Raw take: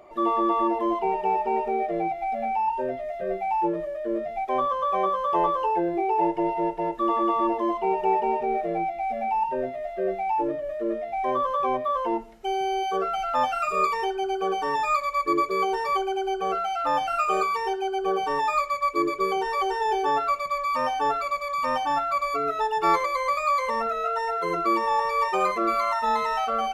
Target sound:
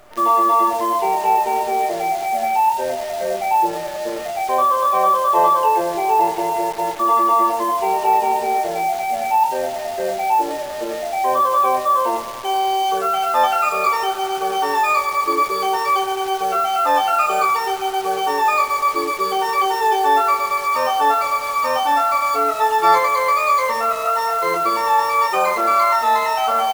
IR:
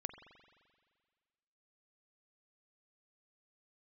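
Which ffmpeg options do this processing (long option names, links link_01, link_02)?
-filter_complex "[0:a]highpass=frequency=450:poles=1,aecho=1:1:25|38:0.668|0.141,asplit=2[link_01][link_02];[1:a]atrim=start_sample=2205,asetrate=22932,aresample=44100[link_03];[link_02][link_03]afir=irnorm=-1:irlink=0,volume=0.5dB[link_04];[link_01][link_04]amix=inputs=2:normalize=0,acrusher=bits=6:dc=4:mix=0:aa=0.000001"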